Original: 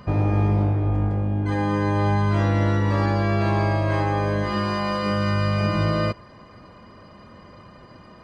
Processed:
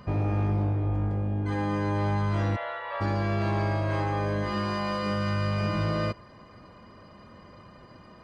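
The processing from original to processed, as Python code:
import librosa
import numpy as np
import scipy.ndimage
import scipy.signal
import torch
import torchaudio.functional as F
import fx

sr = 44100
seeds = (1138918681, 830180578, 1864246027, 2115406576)

y = fx.ellip_bandpass(x, sr, low_hz=590.0, high_hz=3500.0, order=3, stop_db=40, at=(2.55, 3.0), fade=0.02)
y = 10.0 ** (-15.5 / 20.0) * np.tanh(y / 10.0 ** (-15.5 / 20.0))
y = y * librosa.db_to_amplitude(-4.0)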